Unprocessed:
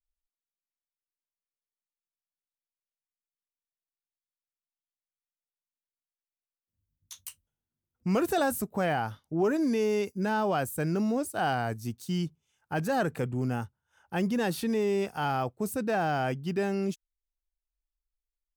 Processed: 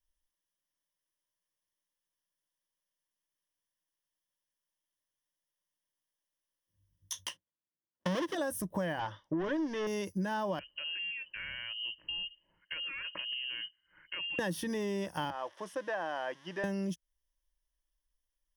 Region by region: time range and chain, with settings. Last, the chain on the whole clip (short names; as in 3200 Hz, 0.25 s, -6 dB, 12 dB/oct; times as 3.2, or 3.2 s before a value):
7.26–8.35 half-waves squared off + gate -58 dBFS, range -19 dB + three-band isolator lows -22 dB, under 170 Hz, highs -17 dB, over 5800 Hz
8.99–9.87 overdrive pedal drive 20 dB, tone 3200 Hz, clips at -18 dBFS + air absorption 100 m + upward expander, over -41 dBFS
10.59–14.39 compressor 12:1, threshold -40 dBFS + inverted band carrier 3000 Hz
15.3–16.64 switching spikes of -30.5 dBFS + HPF 680 Hz + tape spacing loss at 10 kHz 30 dB
whole clip: ripple EQ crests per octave 1.2, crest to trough 11 dB; compressor 6:1, threshold -36 dBFS; gain +4 dB